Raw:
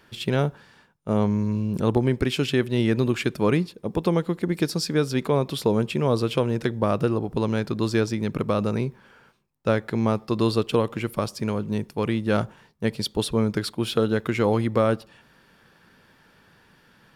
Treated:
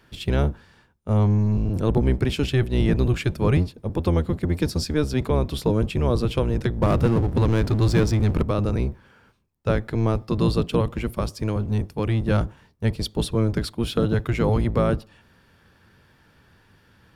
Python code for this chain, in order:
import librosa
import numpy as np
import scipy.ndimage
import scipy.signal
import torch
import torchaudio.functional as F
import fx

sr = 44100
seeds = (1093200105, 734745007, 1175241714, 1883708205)

y = fx.octave_divider(x, sr, octaves=1, level_db=4.0)
y = fx.power_curve(y, sr, exponent=0.7, at=(6.82, 8.43))
y = F.gain(torch.from_numpy(y), -2.0).numpy()